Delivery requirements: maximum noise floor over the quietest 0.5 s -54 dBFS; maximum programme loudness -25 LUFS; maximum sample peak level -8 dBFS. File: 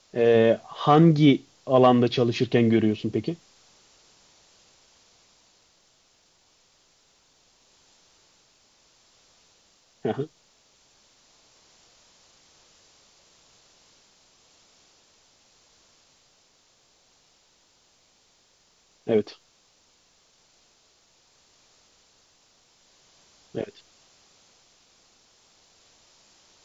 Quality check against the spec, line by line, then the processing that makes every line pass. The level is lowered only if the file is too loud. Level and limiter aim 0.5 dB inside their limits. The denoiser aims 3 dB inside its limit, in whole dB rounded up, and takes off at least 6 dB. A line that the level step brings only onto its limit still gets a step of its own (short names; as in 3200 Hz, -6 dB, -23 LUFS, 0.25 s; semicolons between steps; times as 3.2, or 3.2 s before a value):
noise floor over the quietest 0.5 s -63 dBFS: OK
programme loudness -22.5 LUFS: fail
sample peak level -5.5 dBFS: fail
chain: gain -3 dB